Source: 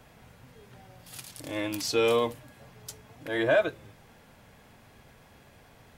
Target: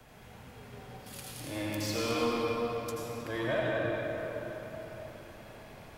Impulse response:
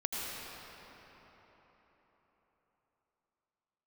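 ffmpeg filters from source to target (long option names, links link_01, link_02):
-filter_complex "[0:a]acrossover=split=280[link_01][link_02];[link_02]acompressor=threshold=-48dB:ratio=1.5[link_03];[link_01][link_03]amix=inputs=2:normalize=0,acrossover=split=200|500|2100[link_04][link_05][link_06][link_07];[link_05]aeval=exprs='0.0158*(abs(mod(val(0)/0.0158+3,4)-2)-1)':channel_layout=same[link_08];[link_04][link_08][link_06][link_07]amix=inputs=4:normalize=0[link_09];[1:a]atrim=start_sample=2205[link_10];[link_09][link_10]afir=irnorm=-1:irlink=0"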